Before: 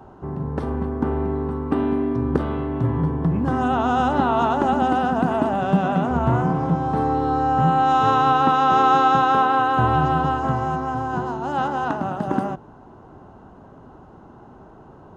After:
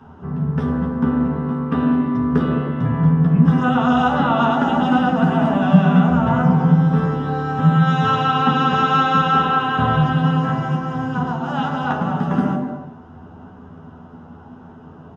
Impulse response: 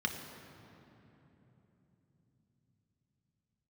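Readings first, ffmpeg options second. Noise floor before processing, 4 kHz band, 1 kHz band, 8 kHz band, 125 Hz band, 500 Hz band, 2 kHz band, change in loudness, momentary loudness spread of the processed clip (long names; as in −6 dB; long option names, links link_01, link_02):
−46 dBFS, +5.5 dB, −1.0 dB, can't be measured, +7.0 dB, −0.5 dB, +4.0 dB, +3.0 dB, 8 LU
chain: -filter_complex "[0:a]asplit=2[link_01][link_02];[link_02]adelay=12,volume=-3dB[link_03];[link_01][link_03]amix=inputs=2:normalize=0[link_04];[1:a]atrim=start_sample=2205,afade=type=out:start_time=0.42:duration=0.01,atrim=end_sample=18963[link_05];[link_04][link_05]afir=irnorm=-1:irlink=0,volume=-3dB"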